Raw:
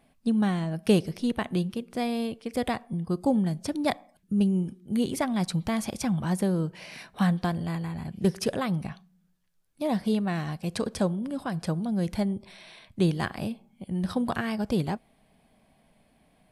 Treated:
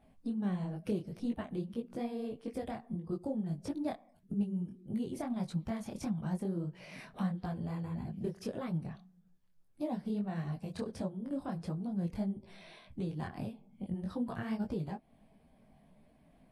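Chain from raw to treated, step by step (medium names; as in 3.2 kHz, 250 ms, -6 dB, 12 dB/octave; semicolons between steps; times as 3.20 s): coarse spectral quantiser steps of 15 dB; tilt shelf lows +5 dB, about 1.1 kHz; compression 2.5:1, threshold -35 dBFS, peak gain reduction 15 dB; detune thickener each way 56 cents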